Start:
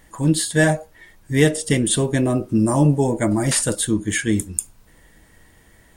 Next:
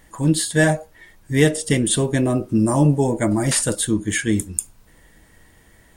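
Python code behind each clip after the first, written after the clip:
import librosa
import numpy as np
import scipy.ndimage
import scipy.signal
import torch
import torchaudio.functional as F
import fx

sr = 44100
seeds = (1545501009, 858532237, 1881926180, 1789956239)

y = x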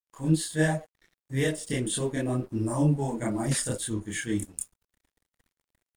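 y = fx.chorus_voices(x, sr, voices=4, hz=1.1, base_ms=28, depth_ms=3.9, mix_pct=55)
y = np.sign(y) * np.maximum(np.abs(y) - 10.0 ** (-46.5 / 20.0), 0.0)
y = F.gain(torch.from_numpy(y), -6.5).numpy()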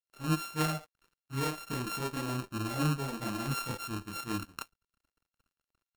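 y = np.r_[np.sort(x[:len(x) // 32 * 32].reshape(-1, 32), axis=1).ravel(), x[len(x) // 32 * 32:]]
y = F.gain(torch.from_numpy(y), -6.5).numpy()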